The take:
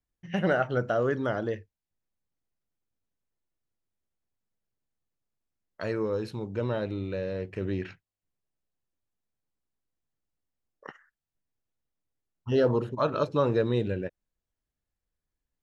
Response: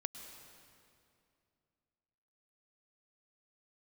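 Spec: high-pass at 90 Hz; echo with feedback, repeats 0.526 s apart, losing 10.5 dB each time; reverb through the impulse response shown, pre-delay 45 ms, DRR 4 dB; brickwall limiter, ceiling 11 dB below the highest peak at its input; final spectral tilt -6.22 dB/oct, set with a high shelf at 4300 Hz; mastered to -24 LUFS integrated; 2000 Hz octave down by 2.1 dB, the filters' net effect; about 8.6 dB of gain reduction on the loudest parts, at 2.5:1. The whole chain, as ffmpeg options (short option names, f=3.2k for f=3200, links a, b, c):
-filter_complex "[0:a]highpass=90,equalizer=f=2k:t=o:g=-4.5,highshelf=f=4.3k:g=7.5,acompressor=threshold=-33dB:ratio=2.5,alimiter=level_in=5.5dB:limit=-24dB:level=0:latency=1,volume=-5.5dB,aecho=1:1:526|1052|1578:0.299|0.0896|0.0269,asplit=2[a][b];[1:a]atrim=start_sample=2205,adelay=45[c];[b][c]afir=irnorm=-1:irlink=0,volume=-2.5dB[d];[a][d]amix=inputs=2:normalize=0,volume=15dB"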